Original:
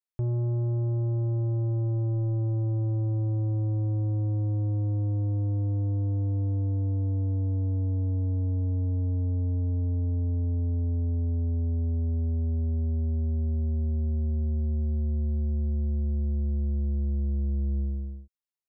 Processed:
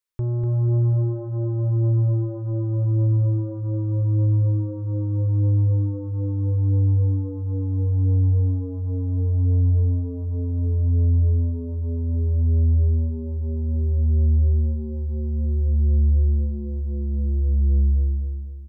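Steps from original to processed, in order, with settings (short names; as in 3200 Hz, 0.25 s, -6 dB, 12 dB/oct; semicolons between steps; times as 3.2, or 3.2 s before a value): Butterworth band-stop 710 Hz, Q 2.9; bell 200 Hz -5.5 dB 1.4 oct; on a send: feedback echo 0.245 s, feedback 40%, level -4 dB; on the sum: gain +6 dB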